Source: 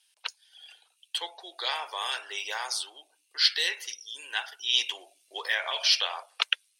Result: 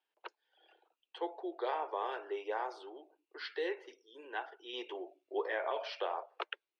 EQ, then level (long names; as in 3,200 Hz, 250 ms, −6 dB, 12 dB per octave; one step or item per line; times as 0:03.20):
four-pole ladder band-pass 390 Hz, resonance 60%
+16.0 dB